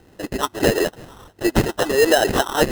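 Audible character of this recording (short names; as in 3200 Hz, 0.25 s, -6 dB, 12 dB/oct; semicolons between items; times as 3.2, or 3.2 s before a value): phasing stages 4, 1.5 Hz, lowest notch 510–1500 Hz; aliases and images of a low sample rate 2300 Hz, jitter 0%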